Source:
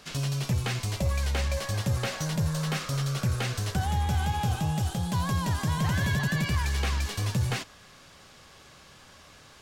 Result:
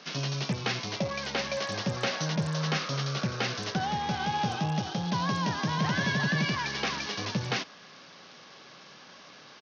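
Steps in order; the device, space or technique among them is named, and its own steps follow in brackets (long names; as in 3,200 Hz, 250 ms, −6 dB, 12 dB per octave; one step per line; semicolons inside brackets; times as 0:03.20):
Bluetooth headset (high-pass filter 160 Hz 24 dB per octave; downsampling to 16,000 Hz; level +2.5 dB; SBC 64 kbit/s 48,000 Hz)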